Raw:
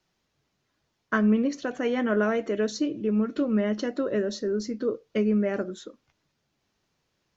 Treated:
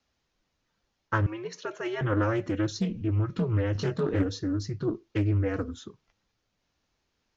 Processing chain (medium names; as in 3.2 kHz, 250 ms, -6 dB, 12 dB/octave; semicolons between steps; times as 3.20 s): 1.26–2.01 s: high-pass 490 Hz 24 dB/octave; frequency shift -110 Hz; resampled via 16 kHz; 3.73–4.26 s: doubling 21 ms -2.5 dB; loudspeaker Doppler distortion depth 0.37 ms; trim -1.5 dB